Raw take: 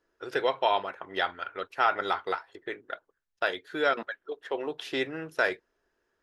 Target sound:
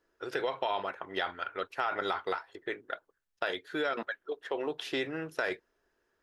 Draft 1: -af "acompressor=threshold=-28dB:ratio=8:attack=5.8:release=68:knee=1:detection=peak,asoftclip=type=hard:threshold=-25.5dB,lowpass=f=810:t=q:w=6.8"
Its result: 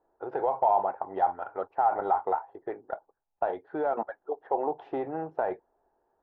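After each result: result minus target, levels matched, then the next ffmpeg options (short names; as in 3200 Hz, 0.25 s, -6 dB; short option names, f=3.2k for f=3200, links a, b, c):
hard clip: distortion +35 dB; 1000 Hz band +4.5 dB
-af "acompressor=threshold=-28dB:ratio=8:attack=5.8:release=68:knee=1:detection=peak,asoftclip=type=hard:threshold=-17.5dB,lowpass=f=810:t=q:w=6.8"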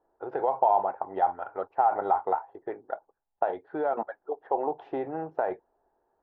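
1000 Hz band +4.5 dB
-af "acompressor=threshold=-28dB:ratio=8:attack=5.8:release=68:knee=1:detection=peak,asoftclip=type=hard:threshold=-17.5dB"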